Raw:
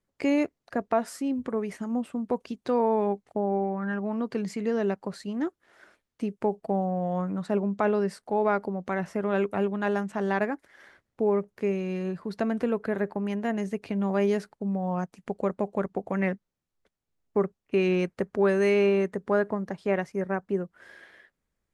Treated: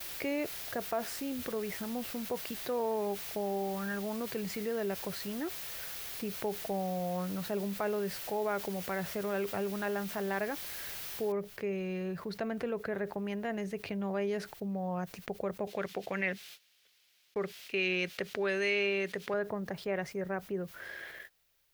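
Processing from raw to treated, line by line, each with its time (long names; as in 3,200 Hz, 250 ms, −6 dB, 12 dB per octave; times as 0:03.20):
0:11.32: noise floor change −45 dB −67 dB
0:15.67–0:19.34: meter weighting curve D
whole clip: noise gate −53 dBFS, range −37 dB; octave-band graphic EQ 250/1,000/8,000 Hz −9/−5/−7 dB; envelope flattener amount 50%; level −7.5 dB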